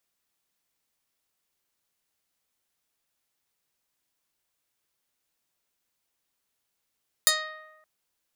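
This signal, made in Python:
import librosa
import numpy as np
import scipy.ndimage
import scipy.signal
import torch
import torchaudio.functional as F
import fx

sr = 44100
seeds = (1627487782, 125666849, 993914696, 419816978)

y = fx.pluck(sr, length_s=0.57, note=75, decay_s=1.13, pick=0.22, brightness='medium')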